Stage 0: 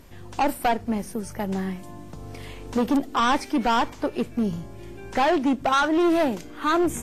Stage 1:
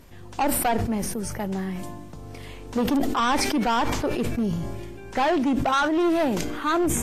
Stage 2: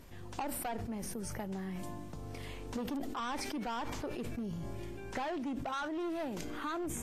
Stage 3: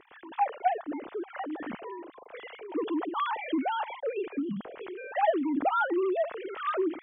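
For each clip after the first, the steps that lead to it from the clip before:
decay stretcher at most 31 dB/s; trim -1.5 dB
compression 6:1, threshold -32 dBFS, peak gain reduction 11.5 dB; trim -4.5 dB
formants replaced by sine waves; trim +7.5 dB

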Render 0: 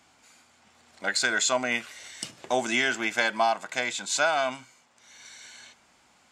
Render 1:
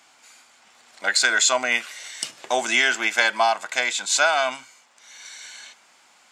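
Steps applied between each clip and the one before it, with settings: high-pass 790 Hz 6 dB/octave; trim +7 dB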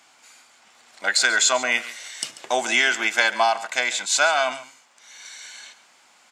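delay 139 ms -16 dB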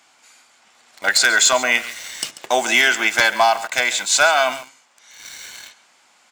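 in parallel at -3.5 dB: word length cut 6-bit, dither none; on the sum: wavefolder -5.5 dBFS

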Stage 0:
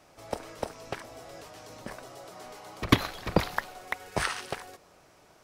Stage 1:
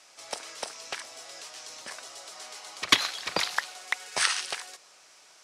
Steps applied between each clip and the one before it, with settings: frequency weighting ITU-R 468; trim -1 dB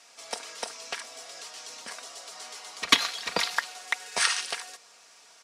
comb 4.3 ms, depth 47%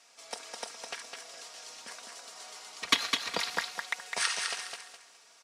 feedback delay 207 ms, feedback 29%, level -5 dB; trim -5.5 dB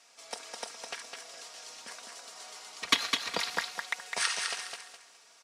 no audible change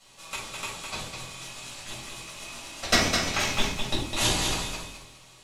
octave divider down 1 oct, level +1 dB; ring modulator 1.8 kHz; simulated room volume 460 m³, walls furnished, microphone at 6.6 m

